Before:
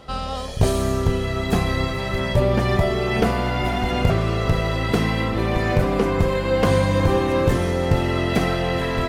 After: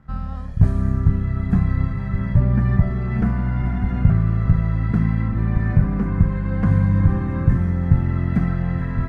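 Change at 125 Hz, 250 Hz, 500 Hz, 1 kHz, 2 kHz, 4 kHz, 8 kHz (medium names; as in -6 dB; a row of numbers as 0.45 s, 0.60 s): +4.5 dB, +1.0 dB, -14.5 dB, -10.0 dB, -9.0 dB, under -20 dB, under -20 dB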